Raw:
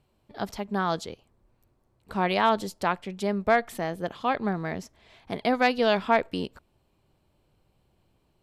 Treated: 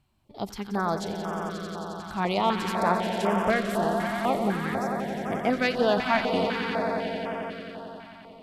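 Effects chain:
echo that builds up and dies away 89 ms, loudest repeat 5, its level −9.5 dB
notch on a step sequencer 4 Hz 470–4,100 Hz

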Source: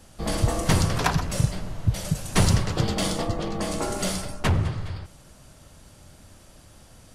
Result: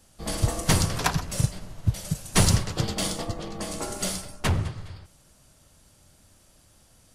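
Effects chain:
high-shelf EQ 4,100 Hz +7 dB
expander for the loud parts 1.5 to 1, over −33 dBFS

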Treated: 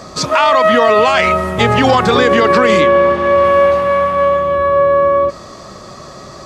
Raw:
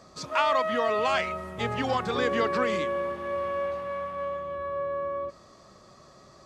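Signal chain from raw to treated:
0:02.80–0:03.43: low-pass filter 4,600 Hz → 7,500 Hz 12 dB per octave
boost into a limiter +21 dB
level −1 dB

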